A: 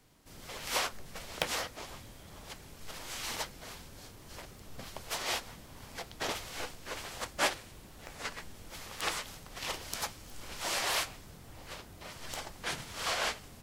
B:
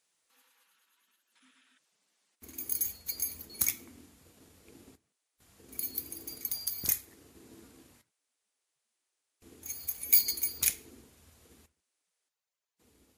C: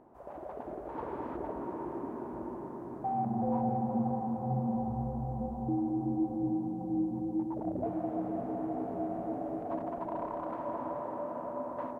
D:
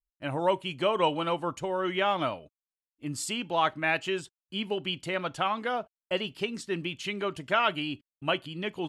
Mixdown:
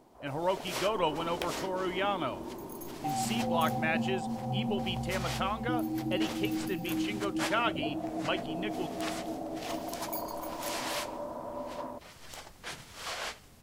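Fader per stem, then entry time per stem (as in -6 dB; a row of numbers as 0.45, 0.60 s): -5.0, -17.5, -1.5, -4.5 dB; 0.00, 0.00, 0.00, 0.00 s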